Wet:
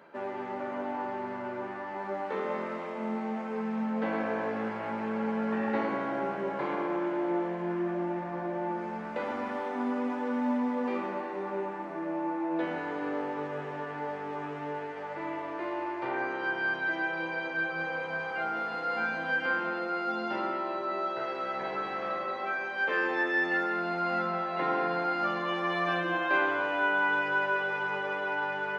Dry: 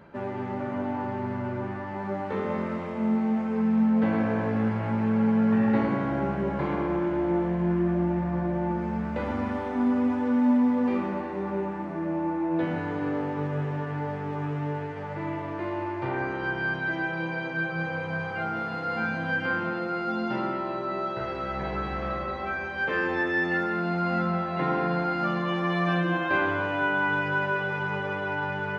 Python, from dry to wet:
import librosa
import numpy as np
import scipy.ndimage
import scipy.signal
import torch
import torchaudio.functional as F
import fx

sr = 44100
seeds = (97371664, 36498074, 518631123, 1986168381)

y = scipy.signal.sosfilt(scipy.signal.butter(2, 360.0, 'highpass', fs=sr, output='sos'), x)
y = F.gain(torch.from_numpy(y), -1.0).numpy()